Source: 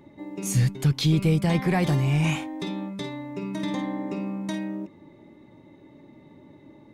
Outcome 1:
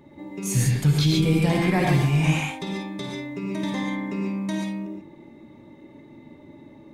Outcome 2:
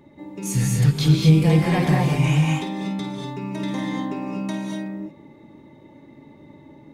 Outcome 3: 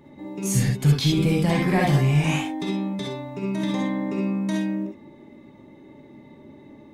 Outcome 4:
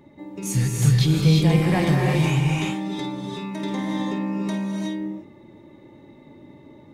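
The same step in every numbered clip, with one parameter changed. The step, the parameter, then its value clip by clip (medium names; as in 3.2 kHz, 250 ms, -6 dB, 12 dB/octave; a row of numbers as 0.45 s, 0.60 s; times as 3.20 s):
gated-style reverb, gate: 160 ms, 260 ms, 90 ms, 390 ms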